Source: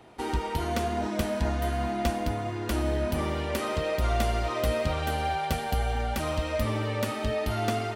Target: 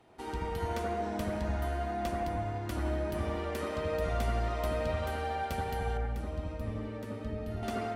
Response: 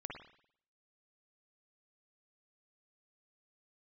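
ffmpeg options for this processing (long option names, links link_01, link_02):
-filter_complex "[0:a]asettb=1/sr,asplit=3[link_01][link_02][link_03];[link_01]atrim=end=5.974[link_04];[link_02]atrim=start=5.97:end=7.63,asetpts=PTS-STARTPTS,afade=type=in:duration=0.004:curve=qsin,afade=type=out:start_time=1.656:duration=0.004:curve=qsin,acrossover=split=430[link_05][link_06];[link_06]acompressor=threshold=-59dB:ratio=1.5[link_07];[link_05][link_07]amix=inputs=2:normalize=0[link_08];[link_03]atrim=start=7.626[link_09];[link_04][link_08]acrossfade=duration=0.004:curve1=hsin:curve2=qsin[link_10];[link_10][link_09]acrossfade=duration=0.004:curve1=qsin:curve2=hsin[link_11];[1:a]atrim=start_sample=2205,asetrate=28665,aresample=44100[link_12];[link_11][link_12]afir=irnorm=-1:irlink=0,volume=-6dB"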